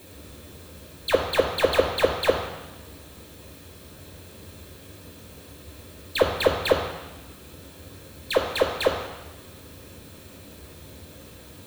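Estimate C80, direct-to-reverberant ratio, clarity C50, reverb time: 9.0 dB, 3.0 dB, 6.5 dB, 1.1 s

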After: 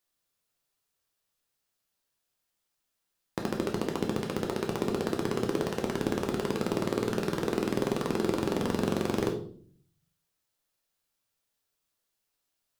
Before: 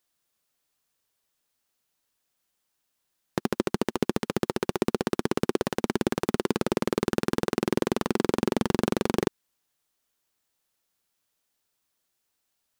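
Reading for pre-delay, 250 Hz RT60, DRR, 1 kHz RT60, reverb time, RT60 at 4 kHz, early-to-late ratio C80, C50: 6 ms, 0.80 s, 1.5 dB, 0.45 s, 0.50 s, 0.45 s, 12.5 dB, 8.5 dB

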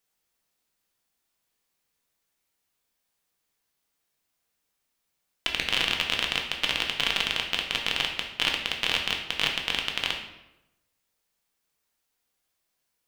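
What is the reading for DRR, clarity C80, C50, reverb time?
1.0 dB, 9.0 dB, 5.5 dB, 0.95 s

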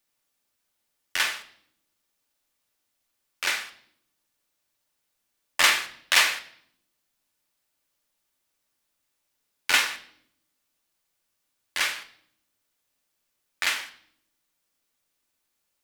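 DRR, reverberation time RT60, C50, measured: 7.5 dB, 0.70 s, 14.0 dB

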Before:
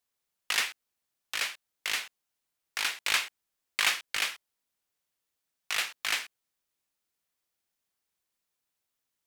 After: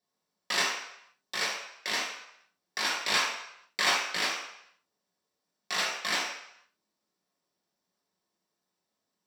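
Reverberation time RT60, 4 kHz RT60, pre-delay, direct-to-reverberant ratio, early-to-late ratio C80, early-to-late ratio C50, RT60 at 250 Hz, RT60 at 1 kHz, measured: 0.75 s, 0.70 s, 3 ms, -5.0 dB, 6.5 dB, 3.0 dB, 0.55 s, 0.80 s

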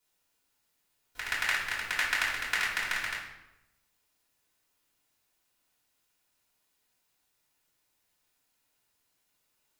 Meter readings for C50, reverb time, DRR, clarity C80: 3.0 dB, 0.95 s, -7.0 dB, 7.0 dB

